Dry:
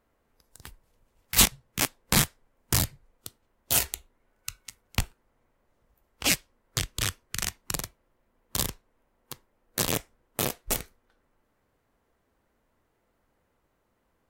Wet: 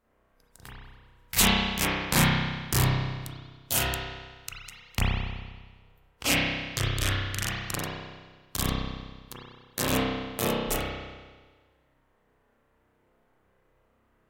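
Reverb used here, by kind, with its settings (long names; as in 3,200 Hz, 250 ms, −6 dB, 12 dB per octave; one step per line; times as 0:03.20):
spring reverb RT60 1.4 s, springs 31 ms, chirp 70 ms, DRR −7.5 dB
level −3.5 dB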